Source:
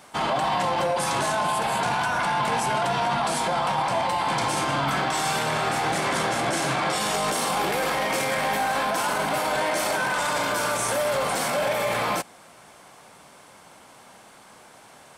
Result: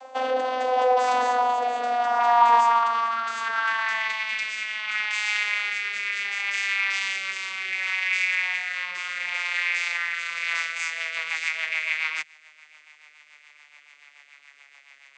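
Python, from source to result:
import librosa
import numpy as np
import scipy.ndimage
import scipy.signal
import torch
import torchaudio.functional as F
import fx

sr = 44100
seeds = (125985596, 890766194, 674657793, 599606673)

p1 = fx.vocoder_glide(x, sr, note=60, semitones=-11)
p2 = fx.dynamic_eq(p1, sr, hz=640.0, q=1.4, threshold_db=-40.0, ratio=4.0, max_db=-7)
p3 = fx.filter_sweep_highpass(p2, sr, from_hz=640.0, to_hz=2200.0, start_s=1.83, end_s=4.31, q=4.6)
p4 = fx.rotary_switch(p3, sr, hz=0.7, then_hz=7.0, switch_at_s=10.23)
p5 = fx.rider(p4, sr, range_db=3, speed_s=0.5)
y = p4 + F.gain(torch.from_numpy(p5), -2.0).numpy()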